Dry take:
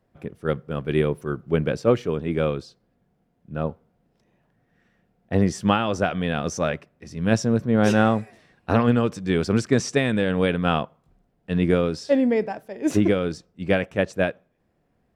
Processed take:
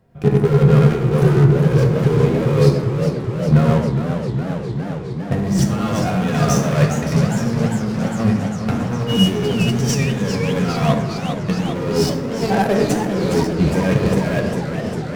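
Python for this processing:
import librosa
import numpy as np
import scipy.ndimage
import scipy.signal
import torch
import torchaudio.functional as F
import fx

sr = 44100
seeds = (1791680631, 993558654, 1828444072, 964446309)

p1 = fx.diode_clip(x, sr, knee_db=-21.0)
p2 = fx.dmg_tone(p1, sr, hz=2900.0, level_db=-28.0, at=(9.06, 9.6), fade=0.02)
p3 = p2 + 10.0 ** (-3.5 / 20.0) * np.pad(p2, (int(94 * sr / 1000.0), 0))[:len(p2)]
p4 = fx.fuzz(p3, sr, gain_db=37.0, gate_db=-39.0)
p5 = p3 + (p4 * 10.0 ** (-10.0 / 20.0))
p6 = fx.over_compress(p5, sr, threshold_db=-23.0, ratio=-0.5)
p7 = fx.low_shelf(p6, sr, hz=270.0, db=6.0)
p8 = fx.rev_fdn(p7, sr, rt60_s=1.2, lf_ratio=1.0, hf_ratio=0.45, size_ms=43.0, drr_db=4.5)
p9 = fx.hpss(p8, sr, part='harmonic', gain_db=7)
p10 = fx.echo_warbled(p9, sr, ms=407, feedback_pct=79, rate_hz=2.8, cents=184, wet_db=-8.0)
y = p10 * 10.0 ** (-4.0 / 20.0)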